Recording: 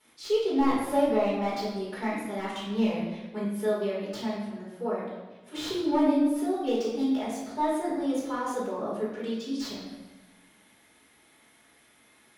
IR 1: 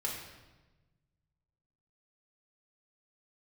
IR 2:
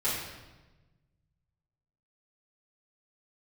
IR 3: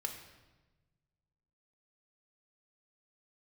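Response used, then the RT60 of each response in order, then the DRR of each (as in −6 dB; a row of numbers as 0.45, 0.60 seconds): 2; 1.2, 1.2, 1.2 seconds; −3.0, −11.0, 3.5 decibels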